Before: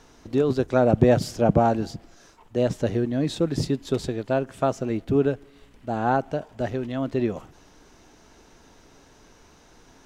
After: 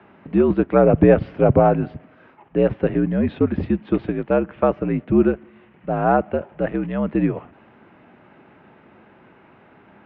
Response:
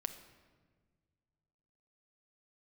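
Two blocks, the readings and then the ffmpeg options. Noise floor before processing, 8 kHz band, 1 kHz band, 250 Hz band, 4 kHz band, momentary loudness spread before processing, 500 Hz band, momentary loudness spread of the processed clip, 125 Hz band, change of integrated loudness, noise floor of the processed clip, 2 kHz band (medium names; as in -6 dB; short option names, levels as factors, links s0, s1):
-54 dBFS, under -35 dB, +3.5 dB, +5.5 dB, no reading, 12 LU, +4.5 dB, 10 LU, +3.0 dB, +4.5 dB, -52 dBFS, +4.0 dB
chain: -af "highpass=f=170:t=q:w=0.5412,highpass=f=170:t=q:w=1.307,lowpass=f=2700:t=q:w=0.5176,lowpass=f=2700:t=q:w=0.7071,lowpass=f=2700:t=q:w=1.932,afreqshift=-64,volume=1.88"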